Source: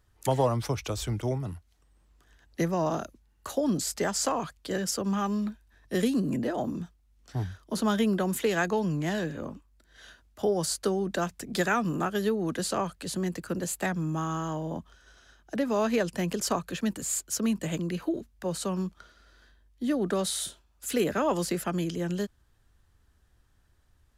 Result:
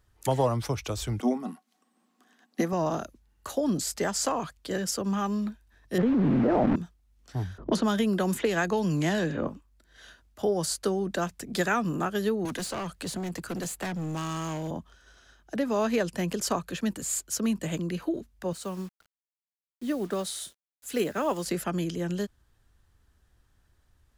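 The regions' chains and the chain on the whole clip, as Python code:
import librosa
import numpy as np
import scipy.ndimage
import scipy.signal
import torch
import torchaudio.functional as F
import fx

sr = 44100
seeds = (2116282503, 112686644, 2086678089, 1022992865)

y = fx.chain(x, sr, fx.brickwall_highpass(low_hz=170.0),
    fx.small_body(hz=(240.0, 750.0, 1100.0), ring_ms=100, db=14), at=(1.2, 2.73))
y = fx.chain(y, sr, fx.delta_hold(step_db=-32.5),
    fx.lowpass(hz=1400.0, slope=12),
    fx.env_flatten(amount_pct=100), at=(5.98, 6.76))
y = fx.chain(y, sr, fx.env_lowpass(base_hz=350.0, full_db=-25.0),
    fx.band_squash(depth_pct=100), at=(7.58, 9.48))
y = fx.chain(y, sr, fx.overload_stage(gain_db=30.0),
    fx.band_squash(depth_pct=70), at=(12.45, 14.71))
y = fx.chain(y, sr, fx.low_shelf(hz=130.0, db=-4.5),
    fx.quant_dither(seeds[0], bits=8, dither='none'),
    fx.upward_expand(threshold_db=-47.0, expansion=1.5), at=(18.53, 21.46))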